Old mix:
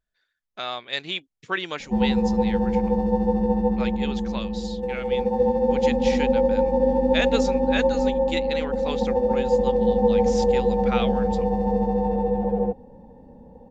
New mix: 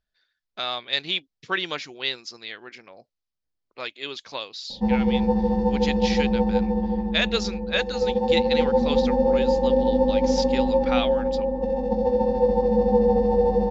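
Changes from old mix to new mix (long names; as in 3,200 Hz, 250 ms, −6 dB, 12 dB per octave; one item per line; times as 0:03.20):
background: entry +2.90 s
master: add low-pass with resonance 4,900 Hz, resonance Q 2.3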